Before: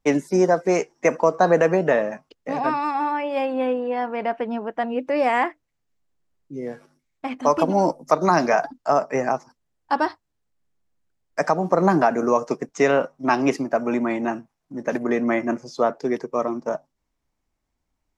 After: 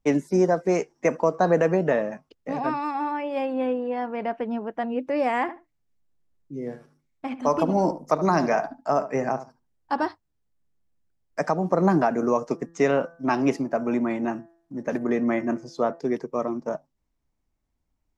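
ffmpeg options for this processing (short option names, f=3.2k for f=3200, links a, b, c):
-filter_complex "[0:a]asettb=1/sr,asplit=3[a][b][c];[a]atrim=end=5.414[d];[b]atrim=start=5.41:end=10.04,asetpts=PTS-STARTPTS,afade=t=in:d=0.004:c=qsin,afade=t=out:st=4.626:d=0.004:c=qsin,asplit=2[e][f];[f]adelay=73,lowpass=f=2.1k:p=1,volume=-12dB,asplit=2[g][h];[h]adelay=73,lowpass=f=2.1k:p=1,volume=0.17[i];[e][g][i]amix=inputs=3:normalize=0,atrim=end_sample=204183[j];[c]atrim=start=10.036[k];[d][j]acrossfade=d=0.004:c1=hsin:c2=qsin[l];[l][k]acrossfade=d=0.004:c1=qsin:c2=hsin,asplit=3[m][n][o];[m]afade=t=out:st=12.53:d=0.02[p];[n]bandreject=f=168.1:t=h:w=4,bandreject=f=336.2:t=h:w=4,bandreject=f=504.3:t=h:w=4,bandreject=f=672.4:t=h:w=4,bandreject=f=840.5:t=h:w=4,bandreject=f=1.0086k:t=h:w=4,bandreject=f=1.1767k:t=h:w=4,bandreject=f=1.3448k:t=h:w=4,bandreject=f=1.5129k:t=h:w=4,bandreject=f=1.681k:t=h:w=4,bandreject=f=1.8491k:t=h:w=4,afade=t=in:st=12.53:d=0.02,afade=t=out:st=15.99:d=0.02[q];[o]afade=t=in:st=15.99:d=0.02[r];[p][q][r]amix=inputs=3:normalize=0,lowshelf=f=350:g=7,volume=-5.5dB"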